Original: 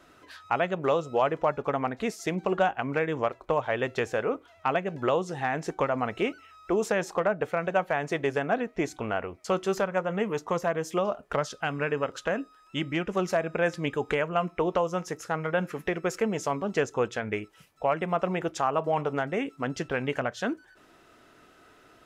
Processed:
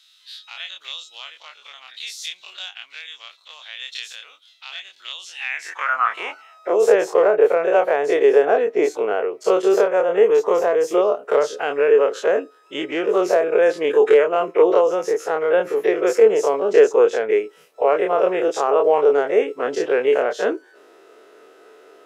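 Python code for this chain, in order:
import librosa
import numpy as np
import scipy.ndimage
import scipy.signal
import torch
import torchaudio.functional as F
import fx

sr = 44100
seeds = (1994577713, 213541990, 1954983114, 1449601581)

y = fx.spec_dilate(x, sr, span_ms=60)
y = fx.filter_sweep_highpass(y, sr, from_hz=3700.0, to_hz=430.0, start_s=5.14, end_s=6.93, q=4.9)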